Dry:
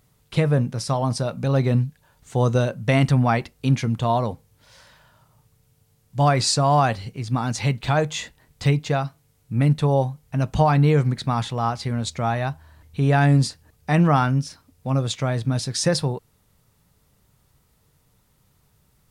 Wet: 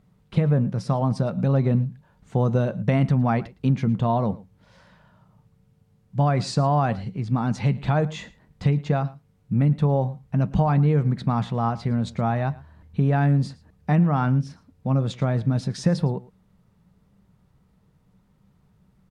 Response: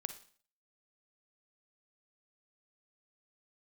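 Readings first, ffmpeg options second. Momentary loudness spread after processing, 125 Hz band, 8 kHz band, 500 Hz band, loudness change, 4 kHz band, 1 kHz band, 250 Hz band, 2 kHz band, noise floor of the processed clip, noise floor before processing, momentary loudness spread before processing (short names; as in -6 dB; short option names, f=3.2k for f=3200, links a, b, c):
9 LU, -0.5 dB, under -10 dB, -3.0 dB, -1.5 dB, -10.5 dB, -4.0 dB, 0.0 dB, -6.5 dB, -62 dBFS, -63 dBFS, 11 LU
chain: -af "lowpass=f=1.4k:p=1,equalizer=f=190:t=o:w=0.4:g=12,acompressor=threshold=-16dB:ratio=6,aecho=1:1:111:0.0944"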